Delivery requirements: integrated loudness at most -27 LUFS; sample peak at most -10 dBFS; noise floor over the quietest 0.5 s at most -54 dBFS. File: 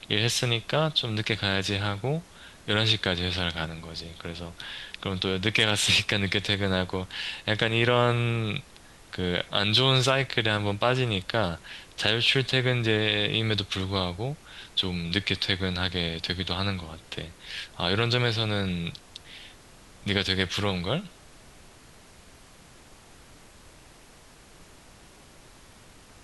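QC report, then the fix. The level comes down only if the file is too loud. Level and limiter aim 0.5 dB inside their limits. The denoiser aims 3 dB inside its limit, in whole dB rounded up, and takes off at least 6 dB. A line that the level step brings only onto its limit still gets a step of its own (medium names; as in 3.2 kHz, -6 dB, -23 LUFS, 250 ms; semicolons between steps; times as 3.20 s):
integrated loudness -26.0 LUFS: fail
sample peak -6.0 dBFS: fail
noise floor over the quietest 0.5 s -52 dBFS: fail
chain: noise reduction 6 dB, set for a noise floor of -52 dBFS; trim -1.5 dB; peak limiter -10.5 dBFS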